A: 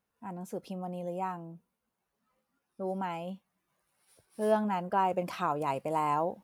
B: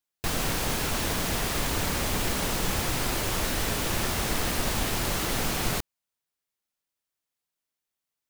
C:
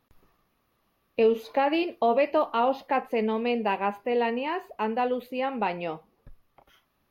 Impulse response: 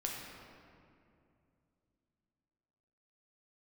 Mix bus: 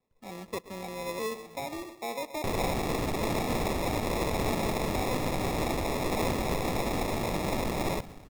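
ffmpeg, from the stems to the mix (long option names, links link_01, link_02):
-filter_complex "[0:a]equalizer=frequency=450:width=0.94:gain=13.5,acrusher=samples=11:mix=1:aa=0.000001:lfo=1:lforange=11:lforate=0.32,acompressor=threshold=-30dB:ratio=1.5,volume=-6.5dB,asplit=2[link_01][link_02];[link_02]volume=-16.5dB[link_03];[1:a]adelay=2200,volume=-2dB,asplit=3[link_04][link_05][link_06];[link_05]volume=-16dB[link_07];[link_06]volume=-17.5dB[link_08];[2:a]volume=-13dB,asplit=3[link_09][link_10][link_11];[link_10]volume=-12.5dB[link_12];[link_11]apad=whole_len=283617[link_13];[link_01][link_13]sidechaincompress=threshold=-47dB:ratio=8:attack=16:release=478[link_14];[3:a]atrim=start_sample=2205[link_15];[link_07][link_15]afir=irnorm=-1:irlink=0[link_16];[link_03][link_08][link_12]amix=inputs=3:normalize=0,aecho=0:1:125|250|375|500|625:1|0.38|0.144|0.0549|0.0209[link_17];[link_14][link_04][link_09][link_16][link_17]amix=inputs=5:normalize=0,acrossover=split=200[link_18][link_19];[link_18]acompressor=threshold=-34dB:ratio=6[link_20];[link_20][link_19]amix=inputs=2:normalize=0,acrusher=samples=29:mix=1:aa=0.000001"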